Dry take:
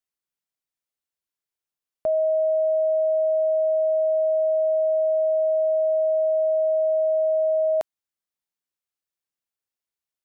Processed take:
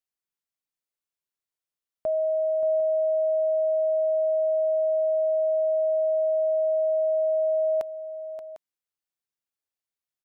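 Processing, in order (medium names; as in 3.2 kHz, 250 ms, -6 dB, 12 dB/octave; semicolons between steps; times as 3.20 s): multi-tap echo 579/751 ms -11.5/-15 dB; trim -3.5 dB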